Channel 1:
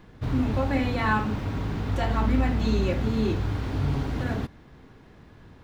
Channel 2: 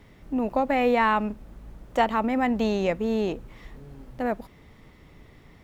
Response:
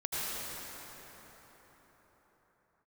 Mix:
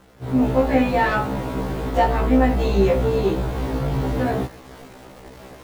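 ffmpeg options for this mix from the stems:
-filter_complex "[0:a]acrusher=bits=7:mix=0:aa=0.000001,asoftclip=type=tanh:threshold=-21dB,equalizer=f=560:t=o:w=1.5:g=9.5,volume=-5dB[a];[1:a]volume=-11dB[b];[a][b]amix=inputs=2:normalize=0,dynaudnorm=f=210:g=3:m=11dB,afftfilt=real='re*1.73*eq(mod(b,3),0)':imag='im*1.73*eq(mod(b,3),0)':win_size=2048:overlap=0.75"

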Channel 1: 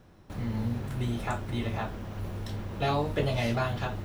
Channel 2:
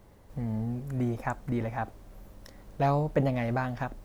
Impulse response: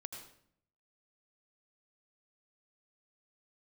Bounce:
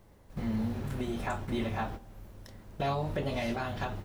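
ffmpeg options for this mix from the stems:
-filter_complex "[0:a]volume=-1.5dB[a];[1:a]bandreject=f=52.62:t=h:w=4,bandreject=f=105.24:t=h:w=4,bandreject=f=157.86:t=h:w=4,bandreject=f=210.48:t=h:w=4,bandreject=f=263.1:t=h:w=4,bandreject=f=315.72:t=h:w=4,bandreject=f=368.34:t=h:w=4,bandreject=f=420.96:t=h:w=4,bandreject=f=473.58:t=h:w=4,bandreject=f=526.2:t=h:w=4,bandreject=f=578.82:t=h:w=4,bandreject=f=631.44:t=h:w=4,bandreject=f=684.06:t=h:w=4,bandreject=f=736.68:t=h:w=4,bandreject=f=789.3:t=h:w=4,bandreject=f=841.92:t=h:w=4,bandreject=f=894.54:t=h:w=4,bandreject=f=947.16:t=h:w=4,bandreject=f=999.78:t=h:w=4,bandreject=f=1.0524k:t=h:w=4,bandreject=f=1.10502k:t=h:w=4,bandreject=f=1.15764k:t=h:w=4,bandreject=f=1.21026k:t=h:w=4,bandreject=f=1.26288k:t=h:w=4,bandreject=f=1.3155k:t=h:w=4,bandreject=f=1.36812k:t=h:w=4,bandreject=f=1.42074k:t=h:w=4,volume=-1,volume=-2.5dB,asplit=2[b][c];[c]apad=whole_len=178540[d];[a][d]sidechaingate=range=-16dB:threshold=-45dB:ratio=16:detection=peak[e];[e][b]amix=inputs=2:normalize=0,alimiter=limit=-22dB:level=0:latency=1:release=270"

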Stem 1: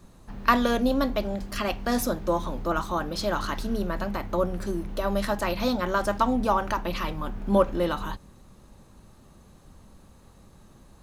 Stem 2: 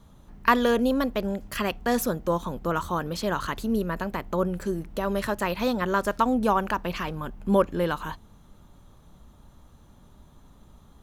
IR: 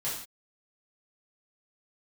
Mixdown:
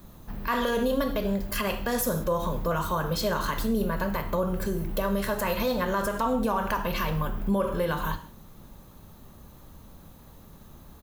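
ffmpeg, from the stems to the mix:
-filter_complex "[0:a]equalizer=f=11k:w=2:g=-11,aexciter=amount=11.2:drive=3.7:freq=11k,volume=1dB[a];[1:a]highshelf=f=8.7k:g=6.5,adelay=1.4,volume=-4dB,asplit=3[b][c][d];[c]volume=-6dB[e];[d]apad=whole_len=486096[f];[a][f]sidechaincompress=threshold=-33dB:ratio=8:attack=10:release=207[g];[2:a]atrim=start_sample=2205[h];[e][h]afir=irnorm=-1:irlink=0[i];[g][b][i]amix=inputs=3:normalize=0,alimiter=limit=-17dB:level=0:latency=1:release=64"

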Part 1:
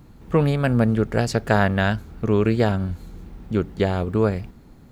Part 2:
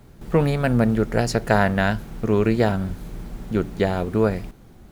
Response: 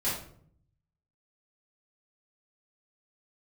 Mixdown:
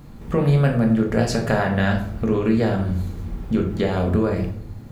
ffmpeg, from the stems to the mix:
-filter_complex "[0:a]acompressor=threshold=-20dB:ratio=6,volume=2.5dB,asplit=2[a][b];[b]volume=-9dB[c];[1:a]volume=-11dB,asplit=2[d][e];[e]apad=whole_len=216612[f];[a][f]sidechaincompress=threshold=-37dB:ratio=8:attack=16:release=142[g];[2:a]atrim=start_sample=2205[h];[c][h]afir=irnorm=-1:irlink=0[i];[g][d][i]amix=inputs=3:normalize=0"

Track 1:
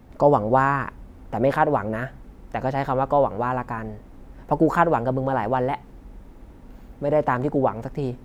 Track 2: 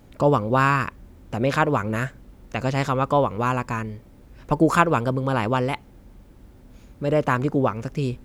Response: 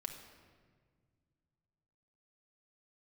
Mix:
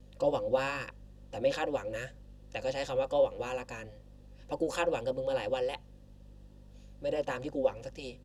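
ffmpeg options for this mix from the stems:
-filter_complex "[0:a]lowpass=f=1.6k:w=0.5412,lowpass=f=1.6k:w=1.3066,flanger=delay=16:depth=5.2:speed=2.4,volume=-15dB[a];[1:a]aexciter=amount=8.5:drive=6.4:freq=3.3k,asplit=3[b][c][d];[b]bandpass=f=530:t=q:w=8,volume=0dB[e];[c]bandpass=f=1.84k:t=q:w=8,volume=-6dB[f];[d]bandpass=f=2.48k:t=q:w=8,volume=-9dB[g];[e][f][g]amix=inputs=3:normalize=0,aeval=exprs='val(0)+0.00316*(sin(2*PI*50*n/s)+sin(2*PI*2*50*n/s)/2+sin(2*PI*3*50*n/s)/3+sin(2*PI*4*50*n/s)/4+sin(2*PI*5*50*n/s)/5)':c=same,adelay=4,volume=-2dB[h];[a][h]amix=inputs=2:normalize=0"

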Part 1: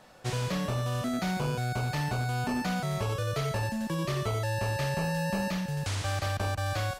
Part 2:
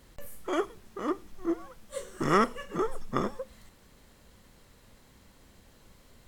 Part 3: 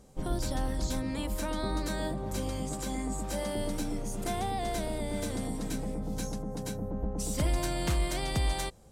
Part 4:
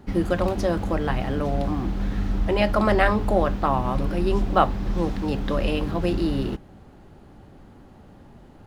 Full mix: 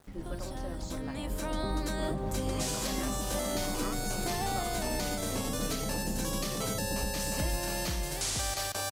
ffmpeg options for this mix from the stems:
-filter_complex "[0:a]bass=f=250:g=-12,treble=f=4k:g=15,adelay=2350,volume=-1.5dB[a];[1:a]adelay=1500,volume=-13dB[b];[2:a]dynaudnorm=f=230:g=13:m=11dB,volume=-8dB[c];[3:a]acompressor=threshold=-40dB:ratio=1.5,volume=-12dB[d];[a][b][c][d]amix=inputs=4:normalize=0,aeval=exprs='val(0)*gte(abs(val(0)),0.00188)':c=same,alimiter=limit=-21.5dB:level=0:latency=1:release=452"

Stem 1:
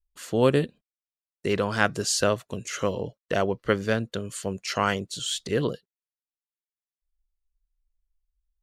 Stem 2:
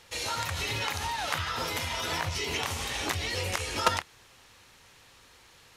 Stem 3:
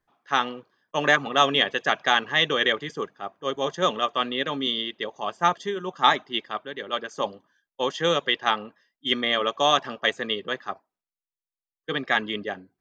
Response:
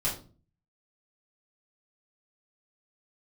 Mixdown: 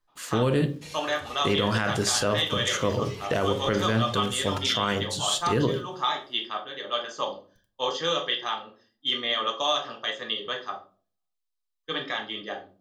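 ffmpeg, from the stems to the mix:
-filter_complex "[0:a]acrusher=bits=10:mix=0:aa=0.000001,volume=1.5dB,asplit=2[a][b];[b]volume=-13dB[c];[1:a]adelay=700,volume=-9dB[d];[2:a]alimiter=limit=-13.5dB:level=0:latency=1:release=396,equalizer=f=125:t=o:w=1:g=-10,equalizer=f=250:t=o:w=1:g=-6,equalizer=f=2k:t=o:w=1:g=-4,equalizer=f=4k:t=o:w=1:g=6,volume=-6dB,asplit=3[e][f][g];[f]volume=-3.5dB[h];[g]apad=whole_len=284936[i];[d][i]sidechaincompress=threshold=-34dB:ratio=8:attack=48:release=993[j];[3:a]atrim=start_sample=2205[k];[c][h]amix=inputs=2:normalize=0[l];[l][k]afir=irnorm=-1:irlink=0[m];[a][j][e][m]amix=inputs=4:normalize=0,alimiter=limit=-14dB:level=0:latency=1:release=45"

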